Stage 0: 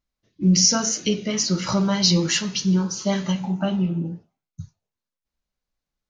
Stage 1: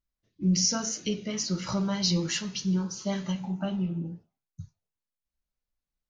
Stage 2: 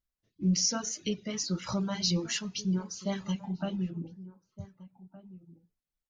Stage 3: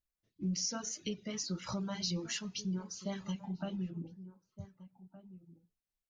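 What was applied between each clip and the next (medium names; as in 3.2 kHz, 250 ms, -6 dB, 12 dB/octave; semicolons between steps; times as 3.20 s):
bass shelf 90 Hz +7 dB; trim -8.5 dB
reverb removal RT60 0.62 s; echo from a far wall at 260 m, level -17 dB; trim -2 dB
compression 2:1, threshold -31 dBFS, peak gain reduction 5.5 dB; trim -4 dB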